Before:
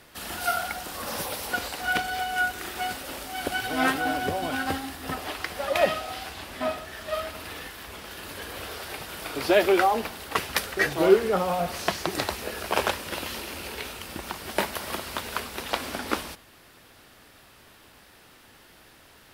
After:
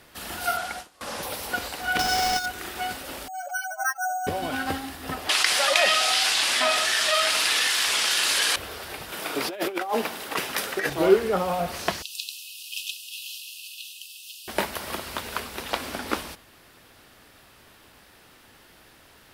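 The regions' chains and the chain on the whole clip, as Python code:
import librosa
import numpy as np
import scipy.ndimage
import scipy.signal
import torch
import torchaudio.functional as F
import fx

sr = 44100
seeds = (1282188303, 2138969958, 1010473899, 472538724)

y = fx.chain(x, sr, fx.delta_mod(bps=64000, step_db=-40.0),
    fx.gate_hold(open_db=-24.0, close_db=-29.0, hold_ms=71.0, range_db=-21, attack_ms=1.4, release_ms=100.0),
    fx.low_shelf(hz=230.0, db=-5.0), at=(0.57, 1.23))
y = fx.chain(y, sr, fx.halfwave_hold(),
    fx.peak_eq(hz=5300.0, db=14.5, octaves=0.24),
    fx.over_compress(threshold_db=-23.0, ratio=-0.5), at=(1.99, 2.46))
y = fx.chain(y, sr, fx.spec_expand(power=3.1),
    fx.brickwall_highpass(low_hz=550.0),
    fx.resample_bad(factor=6, down='filtered', up='hold'), at=(3.28, 4.27))
y = fx.chain(y, sr, fx.weighting(curve='ITU-R 468'),
    fx.env_flatten(amount_pct=70), at=(5.29, 8.56))
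y = fx.chain(y, sr, fx.notch(hz=4400.0, q=26.0),
    fx.over_compress(threshold_db=-25.0, ratio=-0.5),
    fx.highpass(hz=190.0, slope=12), at=(9.12, 10.9))
y = fx.chain(y, sr, fx.clip_hard(threshold_db=-11.0),
    fx.brickwall_highpass(low_hz=2500.0), at=(12.02, 14.48))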